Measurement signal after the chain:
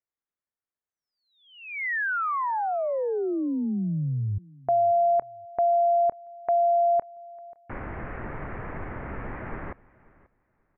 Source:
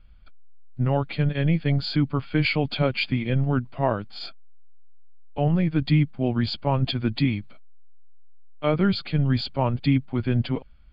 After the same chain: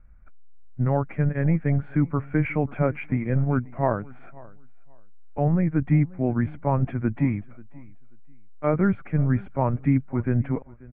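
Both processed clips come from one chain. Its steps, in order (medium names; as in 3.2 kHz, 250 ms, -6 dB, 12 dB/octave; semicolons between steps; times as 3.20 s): steep low-pass 2.1 kHz 48 dB/octave; on a send: feedback delay 536 ms, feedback 21%, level -22.5 dB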